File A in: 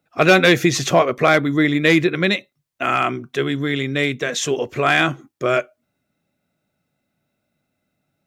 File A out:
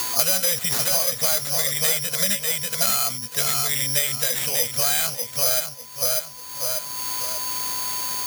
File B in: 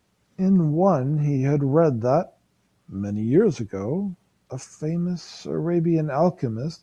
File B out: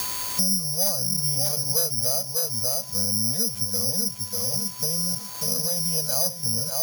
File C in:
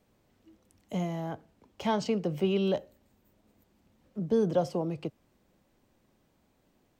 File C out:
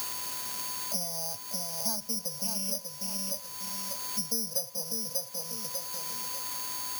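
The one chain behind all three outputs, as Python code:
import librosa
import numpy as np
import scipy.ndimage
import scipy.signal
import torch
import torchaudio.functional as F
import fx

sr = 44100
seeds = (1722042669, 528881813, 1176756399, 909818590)

p1 = fx.env_lowpass(x, sr, base_hz=780.0, full_db=-14.0)
p2 = scipy.signal.sosfilt(scipy.signal.cheby1(3, 1.0, [220.0, 500.0], 'bandstop', fs=sr, output='sos'), p1)
p3 = fx.peak_eq(p2, sr, hz=110.0, db=14.5, octaves=0.95)
p4 = fx.hpss(p3, sr, part='harmonic', gain_db=5)
p5 = fx.low_shelf_res(p4, sr, hz=210.0, db=-8.0, q=3.0)
p6 = 10.0 ** (-9.5 / 20.0) * (np.abs((p5 / 10.0 ** (-9.5 / 20.0) + 3.0) % 4.0 - 2.0) - 1.0)
p7 = p5 + (p6 * librosa.db_to_amplitude(-5.0))
p8 = p7 + 10.0 ** (-44.0 / 20.0) * np.sin(2.0 * np.pi * 1000.0 * np.arange(len(p7)) / sr)
p9 = 10.0 ** (-4.5 / 20.0) * np.tanh(p8 / 10.0 ** (-4.5 / 20.0))
p10 = fx.quant_dither(p9, sr, seeds[0], bits=8, dither='triangular')
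p11 = p10 + fx.echo_feedback(p10, sr, ms=593, feedback_pct=22, wet_db=-6.5, dry=0)
p12 = (np.kron(p11[::8], np.eye(8)[0]) * 8)[:len(p11)]
p13 = fx.band_squash(p12, sr, depth_pct=100)
y = p13 * librosa.db_to_amplitude(-17.0)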